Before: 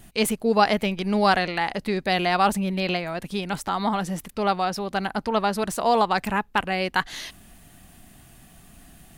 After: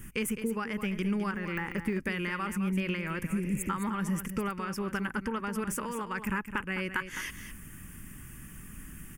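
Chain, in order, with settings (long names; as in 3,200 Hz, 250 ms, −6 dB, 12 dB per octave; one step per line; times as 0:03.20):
0:01.31–0:01.99: de-essing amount 100%
0:03.31–0:03.68: healed spectral selection 400–6,300 Hz before
downward compressor 10 to 1, threshold −30 dBFS, peak gain reduction 17 dB
phaser with its sweep stopped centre 1,700 Hz, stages 4
single-tap delay 210 ms −10 dB
level +4.5 dB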